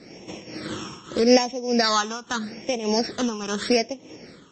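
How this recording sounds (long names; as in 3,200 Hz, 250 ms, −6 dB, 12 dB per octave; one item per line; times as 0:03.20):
a buzz of ramps at a fixed pitch in blocks of 8 samples
phaser sweep stages 8, 0.81 Hz, lowest notch 590–1,400 Hz
tremolo triangle 1.7 Hz, depth 85%
MP3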